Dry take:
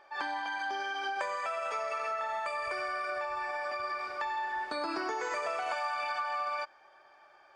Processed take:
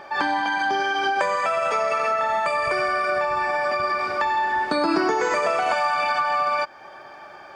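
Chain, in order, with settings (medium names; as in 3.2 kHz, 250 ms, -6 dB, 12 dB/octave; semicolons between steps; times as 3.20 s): peaking EQ 160 Hz +13.5 dB 1.9 oct; in parallel at +2.5 dB: compression, threshold -44 dBFS, peak gain reduction 15.5 dB; on the sum: trim +8.5 dB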